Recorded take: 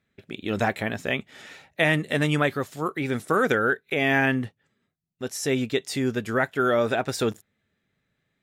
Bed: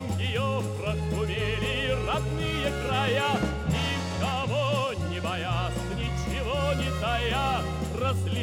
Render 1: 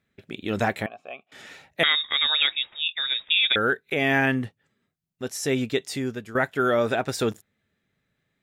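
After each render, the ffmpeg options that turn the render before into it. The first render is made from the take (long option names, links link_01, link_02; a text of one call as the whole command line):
ffmpeg -i in.wav -filter_complex "[0:a]asettb=1/sr,asplit=3[link_01][link_02][link_03];[link_01]atrim=end=0.864[link_04];[link_02]atrim=start=0.86:end=1.32,asetpts=PTS-STARTPTS,afade=type=in:duration=0.004:curve=qsin,afade=type=out:start_time=0.456:duration=0.004:curve=qsin,asplit=3[link_05][link_06][link_07];[link_05]bandpass=frequency=730:width_type=q:width=8,volume=0dB[link_08];[link_06]bandpass=frequency=1090:width_type=q:width=8,volume=-6dB[link_09];[link_07]bandpass=frequency=2440:width_type=q:width=8,volume=-9dB[link_10];[link_08][link_09][link_10]amix=inputs=3:normalize=0[link_11];[link_03]atrim=start=1.316[link_12];[link_04][link_11]acrossfade=duration=0.004:curve1=hsin:curve2=qsin[link_13];[link_13][link_12]acrossfade=duration=0.004:curve1=qsin:curve2=hsin,asettb=1/sr,asplit=3[link_14][link_15][link_16];[link_14]atrim=end=1.834[link_17];[link_15]atrim=start=1.83:end=3.56,asetpts=PTS-STARTPTS,afade=type=in:duration=0.004:curve=qsin,afade=type=out:start_time=1.726:duration=0.004:curve=qsin,lowpass=frequency=3300:width_type=q:width=0.5098,lowpass=frequency=3300:width_type=q:width=0.6013,lowpass=frequency=3300:width_type=q:width=0.9,lowpass=frequency=3300:width_type=q:width=2.563,afreqshift=-3900[link_18];[link_16]atrim=start=3.556[link_19];[link_17][link_18]acrossfade=duration=0.004:curve1=hsin:curve2=qsin[link_20];[link_20][link_19]acrossfade=duration=0.004:curve1=qsin:curve2=hsin,asplit=2[link_21][link_22];[link_21]atrim=end=6.35,asetpts=PTS-STARTPTS,afade=type=out:start_time=5.81:duration=0.54:silence=0.251189[link_23];[link_22]atrim=start=6.35,asetpts=PTS-STARTPTS,afade=type=in:duration=0.004:curve=hsin:silence=0.251189[link_24];[link_23][link_24]concat=n=2:v=0:a=1" out.wav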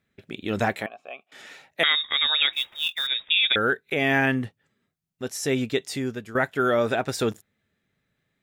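ffmpeg -i in.wav -filter_complex "[0:a]asettb=1/sr,asplit=3[link_01][link_02][link_03];[link_01]atrim=end=0.764[link_04];[link_02]atrim=start=0.76:end=1.9,asetpts=PTS-STARTPTS,afade=type=in:duration=0.004:curve=qsin,afade=type=out:start_time=1.136:duration=0.004:curve=qsin,highpass=frequency=300:poles=1[link_05];[link_03]atrim=start=1.896[link_06];[link_04][link_05]acrossfade=duration=0.004:curve1=hsin:curve2=qsin[link_07];[link_07][link_06]acrossfade=duration=0.004:curve1=qsin:curve2=hsin,asettb=1/sr,asplit=3[link_08][link_09][link_10];[link_08]atrim=end=2.534[link_11];[link_09]atrim=start=2.53:end=3.07,asetpts=PTS-STARTPTS,afade=type=in:duration=0.004:curve=qsin,afade=type=out:start_time=0.536:duration=0.004:curve=qsin,acrusher=bits=4:mode=log:mix=0:aa=0.000001[link_12];[link_10]atrim=start=3.066[link_13];[link_11][link_12]acrossfade=duration=0.004:curve1=hsin:curve2=qsin[link_14];[link_14][link_13]acrossfade=duration=0.004:curve1=qsin:curve2=hsin" out.wav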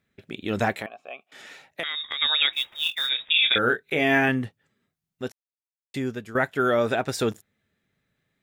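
ffmpeg -i in.wav -filter_complex "[0:a]asettb=1/sr,asplit=3[link_01][link_02][link_03];[link_01]atrim=end=0.724[link_04];[link_02]atrim=start=0.72:end=2.22,asetpts=PTS-STARTPTS,afade=type=in:duration=0.004:curve=qsin,afade=type=out:start_time=1.496:duration=0.004:curve=qsin,acompressor=threshold=-26dB:ratio=6:attack=3.2:release=140:knee=1:detection=peak[link_05];[link_03]atrim=start=2.216[link_06];[link_04][link_05]acrossfade=duration=0.004:curve1=hsin:curve2=qsin[link_07];[link_07][link_06]acrossfade=duration=0.004:curve1=qsin:curve2=hsin,asettb=1/sr,asplit=3[link_08][link_09][link_10];[link_08]atrim=end=2.774[link_11];[link_09]atrim=start=2.77:end=4.29,asetpts=PTS-STARTPTS,afade=type=in:duration=0.004:curve=qsin,afade=type=out:start_time=1.516:duration=0.004:curve=qsin,asplit=2[link_12][link_13];[link_13]adelay=25,volume=-6.5dB[link_14];[link_12][link_14]amix=inputs=2:normalize=0,atrim=end_sample=67032[link_15];[link_10]atrim=start=4.286[link_16];[link_11][link_15]acrossfade=duration=0.004:curve1=hsin:curve2=qsin[link_17];[link_17][link_16]acrossfade=duration=0.004:curve1=qsin:curve2=hsin,asplit=3[link_18][link_19][link_20];[link_18]atrim=end=5.32,asetpts=PTS-STARTPTS,afade=type=out:start_time=5.316:duration=0.004:curve=hsin[link_21];[link_19]atrim=start=5.32:end=5.94,asetpts=PTS-STARTPTS,volume=0[link_22];[link_20]atrim=start=5.94,asetpts=PTS-STARTPTS,afade=type=in:duration=0.004:curve=hsin[link_23];[link_21][link_22][link_23]concat=n=3:v=0:a=1" out.wav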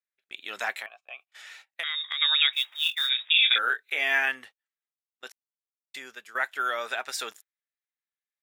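ffmpeg -i in.wav -af "highpass=1200,agate=range=-21dB:threshold=-49dB:ratio=16:detection=peak" out.wav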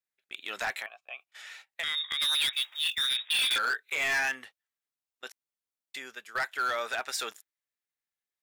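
ffmpeg -i in.wav -af "asoftclip=type=hard:threshold=-24.5dB" out.wav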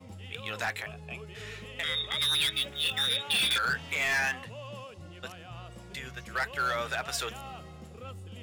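ffmpeg -i in.wav -i bed.wav -filter_complex "[1:a]volume=-16.5dB[link_01];[0:a][link_01]amix=inputs=2:normalize=0" out.wav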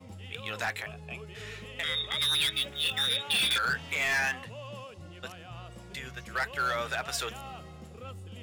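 ffmpeg -i in.wav -af anull out.wav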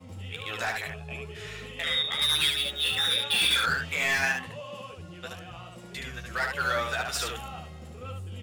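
ffmpeg -i in.wav -af "aecho=1:1:12|74:0.631|0.708" out.wav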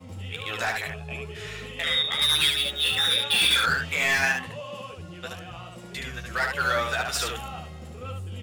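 ffmpeg -i in.wav -af "volume=3dB" out.wav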